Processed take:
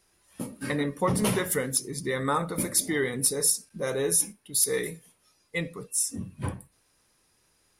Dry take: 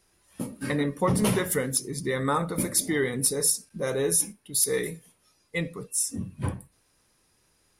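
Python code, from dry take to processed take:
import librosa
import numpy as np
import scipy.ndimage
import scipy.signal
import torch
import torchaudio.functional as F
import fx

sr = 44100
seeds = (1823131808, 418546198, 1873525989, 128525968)

y = fx.low_shelf(x, sr, hz=390.0, db=-3.0)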